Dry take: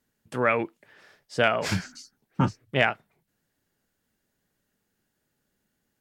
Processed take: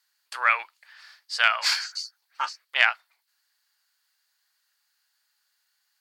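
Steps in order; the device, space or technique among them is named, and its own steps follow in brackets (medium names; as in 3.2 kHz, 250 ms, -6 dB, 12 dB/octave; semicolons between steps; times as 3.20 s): headphones lying on a table (high-pass 1 kHz 24 dB/octave; peaking EQ 4.5 kHz +12 dB 0.36 oct); 0.62–1.69 s: high-pass 570 Hz 12 dB/octave; trim +4.5 dB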